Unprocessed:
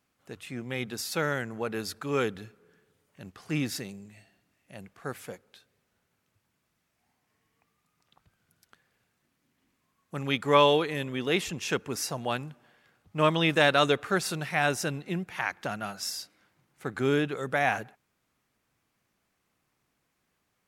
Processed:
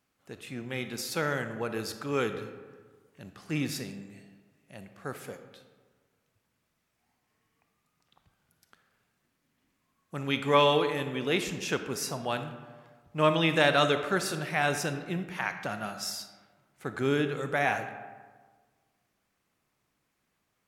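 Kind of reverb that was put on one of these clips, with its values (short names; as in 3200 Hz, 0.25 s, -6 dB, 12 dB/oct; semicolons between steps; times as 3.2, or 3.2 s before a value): digital reverb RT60 1.5 s, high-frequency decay 0.5×, pre-delay 0 ms, DRR 8 dB; gain -1.5 dB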